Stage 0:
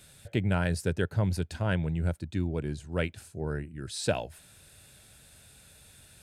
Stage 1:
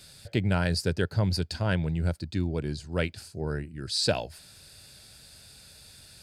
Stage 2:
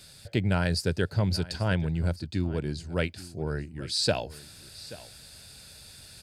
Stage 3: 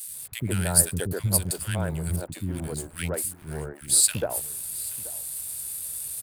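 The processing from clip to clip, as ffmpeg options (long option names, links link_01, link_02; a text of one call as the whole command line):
ffmpeg -i in.wav -af "equalizer=frequency=4700:width=3.6:gain=14.5,volume=1.5dB" out.wav
ffmpeg -i in.wav -af "areverse,acompressor=mode=upward:threshold=-43dB:ratio=2.5,areverse,aecho=1:1:832:0.126" out.wav
ffmpeg -i in.wav -filter_complex "[0:a]aexciter=amount=13:drive=8:freq=8100,aeval=exprs='sgn(val(0))*max(abs(val(0))-0.0106,0)':channel_layout=same,acrossover=split=290|1500[link_01][link_02][link_03];[link_01]adelay=70[link_04];[link_02]adelay=140[link_05];[link_04][link_05][link_03]amix=inputs=3:normalize=0,volume=1dB" out.wav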